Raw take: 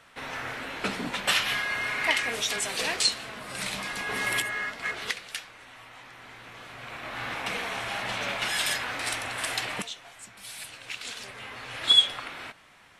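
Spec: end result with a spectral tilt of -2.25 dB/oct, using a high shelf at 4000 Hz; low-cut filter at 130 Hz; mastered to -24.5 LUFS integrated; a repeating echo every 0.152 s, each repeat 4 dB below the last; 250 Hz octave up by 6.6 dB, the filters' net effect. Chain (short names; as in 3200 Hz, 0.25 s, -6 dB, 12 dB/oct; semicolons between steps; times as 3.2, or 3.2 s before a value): HPF 130 Hz; bell 250 Hz +8.5 dB; high shelf 4000 Hz +5.5 dB; feedback echo 0.152 s, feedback 63%, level -4 dB; gain -1 dB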